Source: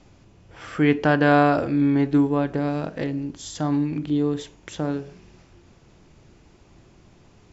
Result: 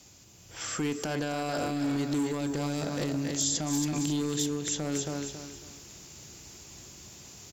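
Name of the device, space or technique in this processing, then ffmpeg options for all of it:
FM broadcast chain: -filter_complex "[0:a]highpass=f=46:w=0.5412,highpass=f=46:w=1.3066,aecho=1:1:274|548|822:0.398|0.115|0.0335,dynaudnorm=f=100:g=9:m=6dB,acrossover=split=1300|4700[a][b][c];[a]acompressor=threshold=-18dB:ratio=4[d];[b]acompressor=threshold=-42dB:ratio=4[e];[c]acompressor=threshold=-48dB:ratio=4[f];[d][e][f]amix=inputs=3:normalize=0,aemphasis=mode=production:type=75fm,alimiter=limit=-15dB:level=0:latency=1:release=11,asoftclip=type=hard:threshold=-18.5dB,lowpass=f=15k:w=0.5412,lowpass=f=15k:w=1.3066,aemphasis=mode=production:type=75fm,volume=-5.5dB"

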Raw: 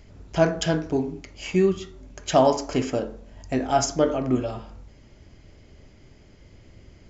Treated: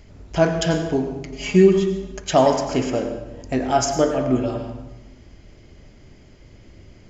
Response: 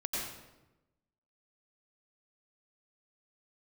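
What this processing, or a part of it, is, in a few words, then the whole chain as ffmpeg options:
saturated reverb return: -filter_complex "[0:a]asplit=2[a][b];[1:a]atrim=start_sample=2205[c];[b][c]afir=irnorm=-1:irlink=0,asoftclip=type=tanh:threshold=-11dB,volume=-7.5dB[d];[a][d]amix=inputs=2:normalize=0,asettb=1/sr,asplit=3[e][f][g];[e]atrim=end=1.324[h];[f]atrim=start=1.32:end=2.2,asetpts=PTS-STARTPTS,afade=t=in:d=0.004:c=qsin,afade=t=out:st=0.876:d=0.004:c=qsin,aecho=1:1:4.8:0.97,atrim=end_sample=38808[i];[g]atrim=start=2.196[j];[h][i]acrossfade=d=0.004:c1=hsin:c2=qsin[k];[k][j]acrossfade=d=0.004:c1=qsin:c2=hsin"

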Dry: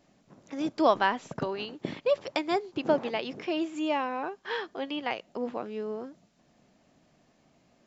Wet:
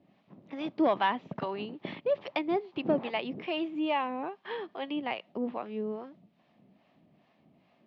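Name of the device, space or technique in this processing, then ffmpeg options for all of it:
guitar amplifier with harmonic tremolo: -filter_complex "[0:a]acrossover=split=580[a][b];[a]aeval=exprs='val(0)*(1-0.7/2+0.7/2*cos(2*PI*2.4*n/s))':c=same[c];[b]aeval=exprs='val(0)*(1-0.7/2-0.7/2*cos(2*PI*2.4*n/s))':c=same[d];[c][d]amix=inputs=2:normalize=0,asoftclip=type=tanh:threshold=-19dB,highpass=95,equalizer=f=190:t=q:w=4:g=4,equalizer=f=480:t=q:w=4:g=-3,equalizer=f=1.5k:t=q:w=4:g=-7,lowpass=f=3.5k:w=0.5412,lowpass=f=3.5k:w=1.3066,volume=3dB"

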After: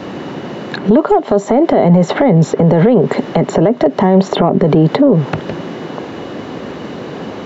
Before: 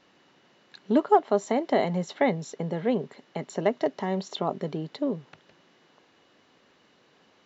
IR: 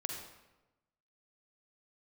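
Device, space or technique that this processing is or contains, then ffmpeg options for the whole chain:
mastering chain: -filter_complex "[0:a]highpass=57,equalizer=f=5.3k:t=o:w=0.77:g=-2,acrossover=split=500|2700[a][b][c];[a]acompressor=threshold=-39dB:ratio=4[d];[b]acompressor=threshold=-34dB:ratio=4[e];[c]acompressor=threshold=-58dB:ratio=4[f];[d][e][f]amix=inputs=3:normalize=0,acompressor=threshold=-38dB:ratio=2.5,asoftclip=type=tanh:threshold=-28.5dB,tiltshelf=f=970:g=8,alimiter=level_in=34dB:limit=-1dB:release=50:level=0:latency=1,volume=-1dB"

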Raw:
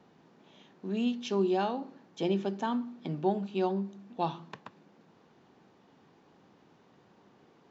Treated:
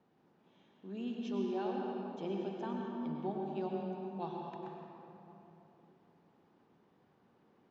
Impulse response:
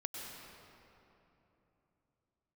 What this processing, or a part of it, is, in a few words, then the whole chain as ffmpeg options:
swimming-pool hall: -filter_complex "[1:a]atrim=start_sample=2205[a];[0:a][a]afir=irnorm=-1:irlink=0,highshelf=f=3.7k:g=-7.5,volume=-7.5dB"

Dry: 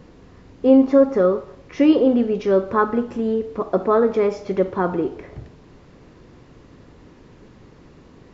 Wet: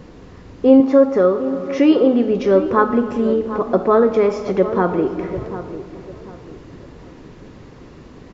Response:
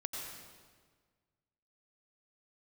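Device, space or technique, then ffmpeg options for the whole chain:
ducked reverb: -filter_complex "[0:a]asettb=1/sr,asplit=3[a][b][c];[a]atrim=end=0.804[d];[b]atrim=start=0.8:end=2.28,asetpts=PTS-STARTPTS,afade=t=in:d=0.004:c=qsin,afade=t=out:st=1.476:d=0.004:c=qsin,highpass=f=180:p=1[e];[c]atrim=start=2.276[f];[d][e]acrossfade=d=0.004:c1=hsin:c2=qsin[g];[g][f]acrossfade=d=0.004:c1=qsin:c2=hsin,asplit=3[h][i][j];[1:a]atrim=start_sample=2205[k];[i][k]afir=irnorm=-1:irlink=0[l];[j]apad=whole_len=367544[m];[l][m]sidechaincompress=threshold=-26dB:ratio=8:attack=16:release=303,volume=-3dB[n];[h][n]amix=inputs=2:normalize=0,asplit=2[o][p];[p]adelay=746,lowpass=f=1.5k:p=1,volume=-12dB,asplit=2[q][r];[r]adelay=746,lowpass=f=1.5k:p=1,volume=0.35,asplit=2[s][t];[t]adelay=746,lowpass=f=1.5k:p=1,volume=0.35,asplit=2[u][v];[v]adelay=746,lowpass=f=1.5k:p=1,volume=0.35[w];[o][q][s][u][w]amix=inputs=5:normalize=0,volume=2dB"

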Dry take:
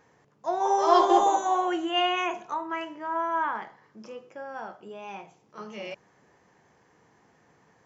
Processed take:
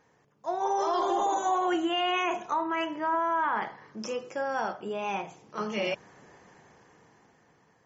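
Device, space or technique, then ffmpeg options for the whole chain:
low-bitrate web radio: -filter_complex "[0:a]asettb=1/sr,asplit=3[a][b][c];[a]atrim=end=4.034[d];[b]atrim=start=4.03:end=4.73,asetpts=PTS-STARTPTS,afade=t=in:d=0.004:c=qsin,afade=t=out:st=0.696:d=0.004:c=qsin,bass=f=250:g=-1,treble=f=4k:g=9[e];[c]atrim=start=4.726[f];[d][e]acrossfade=d=0.004:c1=hsin:c2=qsin[g];[g][f]acrossfade=d=0.004:c1=qsin:c2=hsin,dynaudnorm=f=320:g=9:m=11.5dB,alimiter=limit=-16dB:level=0:latency=1:release=26,volume=-3dB" -ar 48000 -c:a libmp3lame -b:a 32k

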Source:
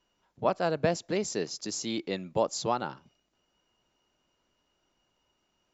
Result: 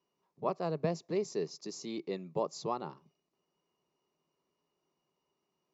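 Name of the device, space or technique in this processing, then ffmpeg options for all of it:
car door speaker: -af "highpass=100,equalizer=f=100:t=q:w=4:g=-8,equalizer=f=160:t=q:w=4:g=9,equalizer=f=400:t=q:w=4:g=9,equalizer=f=1.1k:t=q:w=4:g=7,equalizer=f=1.5k:t=q:w=4:g=-10,equalizer=f=3.2k:t=q:w=4:g=-7,lowpass=f=6.6k:w=0.5412,lowpass=f=6.6k:w=1.3066,volume=-8.5dB"

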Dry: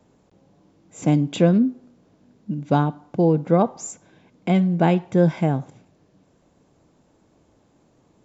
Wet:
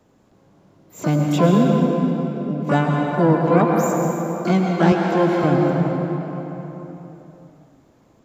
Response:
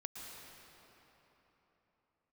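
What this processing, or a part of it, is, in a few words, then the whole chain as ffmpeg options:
shimmer-style reverb: -filter_complex "[0:a]asplit=2[a][b];[b]asetrate=88200,aresample=44100,atempo=0.5,volume=-8dB[c];[a][c]amix=inputs=2:normalize=0[d];[1:a]atrim=start_sample=2205[e];[d][e]afir=irnorm=-1:irlink=0,asettb=1/sr,asplit=3[f][g][h];[f]atrim=end=4.924[i];[g]atrim=start=4.92:end=5.44,asetpts=PTS-STARTPTS,afade=t=in:d=0.004:c=qsin,afade=t=out:st=0.516:d=0.004:c=qsin,highpass=210[j];[h]atrim=start=5.436[k];[i][j]acrossfade=d=0.004:c1=hsin:c2=qsin[l];[l][k]acrossfade=d=0.004:c1=qsin:c2=hsin,volume=5dB"

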